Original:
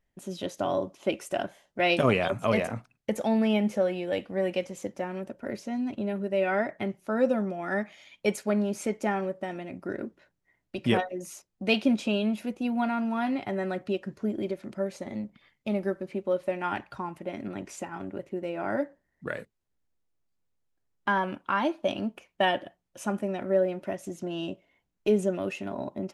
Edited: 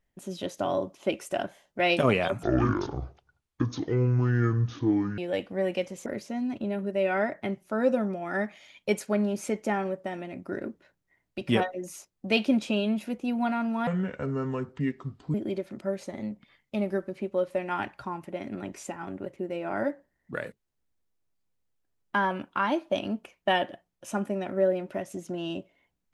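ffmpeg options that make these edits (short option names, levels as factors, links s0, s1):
-filter_complex "[0:a]asplit=6[s0][s1][s2][s3][s4][s5];[s0]atrim=end=2.434[s6];[s1]atrim=start=2.43:end=3.97,asetpts=PTS-STARTPTS,asetrate=24696,aresample=44100[s7];[s2]atrim=start=3.966:end=4.852[s8];[s3]atrim=start=5.428:end=13.244[s9];[s4]atrim=start=13.24:end=14.27,asetpts=PTS-STARTPTS,asetrate=30870,aresample=44100,atrim=end_sample=64890,asetpts=PTS-STARTPTS[s10];[s5]atrim=start=14.266[s11];[s6][s7]acrossfade=d=0.004:c1=hsin:c2=hsin[s12];[s12][s8]acrossfade=d=0.004:c1=hsin:c2=hsin[s13];[s13][s9]acrossfade=d=0.004:c1=hsin:c2=hsin[s14];[s14][s10]acrossfade=d=0.004:c1=hsin:c2=hsin[s15];[s15][s11]acrossfade=d=0.004:c1=hsin:c2=hsin"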